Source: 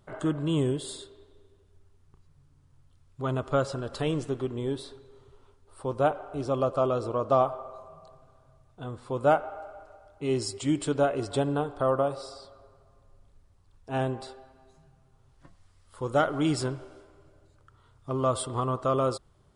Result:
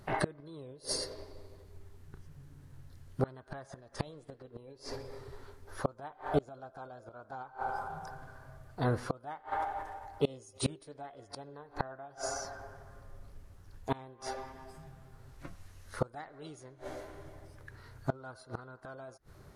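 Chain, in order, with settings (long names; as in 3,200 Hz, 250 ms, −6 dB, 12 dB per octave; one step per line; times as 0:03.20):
formants moved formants +4 semitones
gate with flip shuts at −25 dBFS, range −29 dB
level +7.5 dB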